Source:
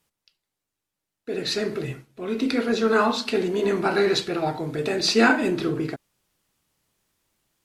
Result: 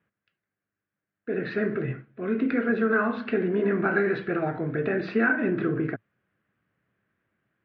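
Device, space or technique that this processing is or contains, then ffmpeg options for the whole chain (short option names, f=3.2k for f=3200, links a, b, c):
bass amplifier: -af "acompressor=threshold=-21dB:ratio=6,highpass=90,equalizer=f=110:t=q:w=4:g=6,equalizer=f=200:t=q:w=4:g=5,equalizer=f=890:t=q:w=4:g=-9,equalizer=f=1.6k:t=q:w=4:g=8,lowpass=f=2.2k:w=0.5412,lowpass=f=2.2k:w=1.3066"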